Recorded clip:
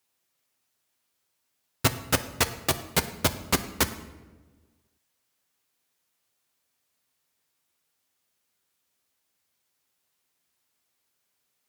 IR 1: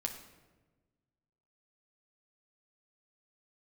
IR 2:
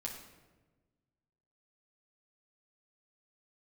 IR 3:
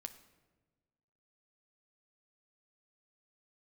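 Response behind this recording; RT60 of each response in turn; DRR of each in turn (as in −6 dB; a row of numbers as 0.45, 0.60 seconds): 3; 1.3, 1.3, 1.3 seconds; 2.5, −2.5, 8.0 decibels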